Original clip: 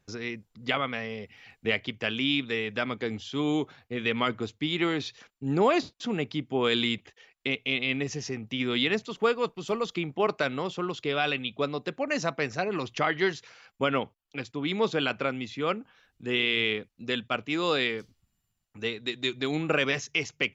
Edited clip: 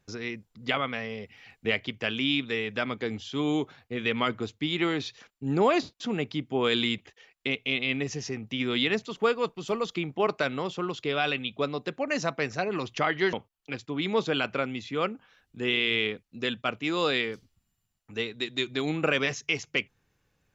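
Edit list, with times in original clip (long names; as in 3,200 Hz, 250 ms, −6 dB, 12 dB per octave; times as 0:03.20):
0:13.33–0:13.99: remove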